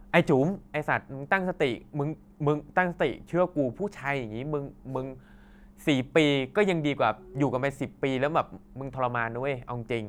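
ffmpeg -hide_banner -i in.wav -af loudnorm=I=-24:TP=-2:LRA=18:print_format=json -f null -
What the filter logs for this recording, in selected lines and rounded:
"input_i" : "-28.6",
"input_tp" : "-8.0",
"input_lra" : "2.7",
"input_thresh" : "-38.8",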